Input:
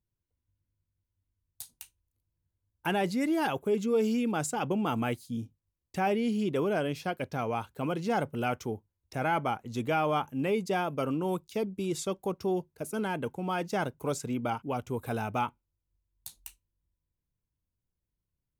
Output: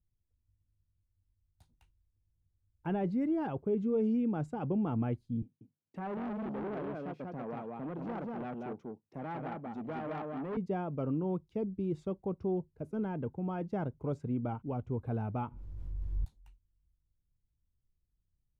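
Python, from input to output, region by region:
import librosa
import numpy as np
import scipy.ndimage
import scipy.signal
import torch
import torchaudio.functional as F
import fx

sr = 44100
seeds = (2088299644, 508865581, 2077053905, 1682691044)

y = fx.chain(x, sr, fx.highpass(hz=170.0, slope=24),
    fx.echo_single(ms=189, db=-3.5),
    fx.transformer_sat(knee_hz=2600.0), at=(5.42, 10.57))
y = fx.chain(y, sr, fx.bass_treble(bass_db=-1, treble_db=5),
    fx.pre_swell(db_per_s=22.0), at=(15.43, 16.4))
y = fx.lowpass(y, sr, hz=1500.0, slope=6)
y = fx.tilt_eq(y, sr, slope=-3.5)
y = y * 10.0 ** (-8.5 / 20.0)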